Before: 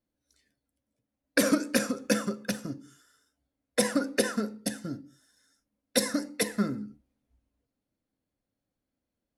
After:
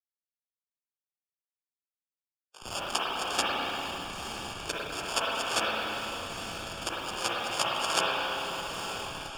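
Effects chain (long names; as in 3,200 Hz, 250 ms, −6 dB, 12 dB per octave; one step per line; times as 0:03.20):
played backwards from end to start
slack as between gear wheels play −27 dBFS
gate on every frequency bin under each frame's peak −20 dB weak
high-shelf EQ 6,400 Hz +9.5 dB
decimation without filtering 22×
meter weighting curve ITU-R 468
feedback delay with all-pass diffusion 947 ms, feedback 57%, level −13.5 dB
spring reverb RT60 2.2 s, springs 32/49/55 ms, chirp 70 ms, DRR −5 dB
in parallel at −11 dB: comparator with hysteresis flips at −37.5 dBFS
on the sum: multiband upward and downward compressor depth 40%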